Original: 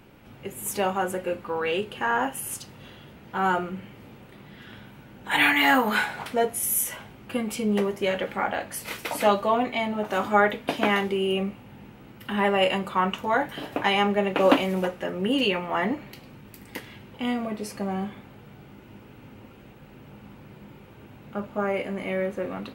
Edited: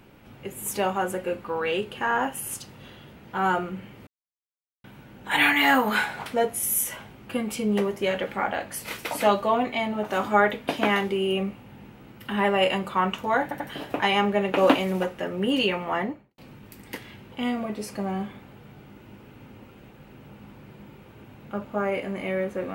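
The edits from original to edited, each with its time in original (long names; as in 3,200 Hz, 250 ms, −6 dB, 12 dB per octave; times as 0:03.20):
0:04.07–0:04.84: silence
0:13.42: stutter 0.09 s, 3 plays
0:15.70–0:16.20: fade out and dull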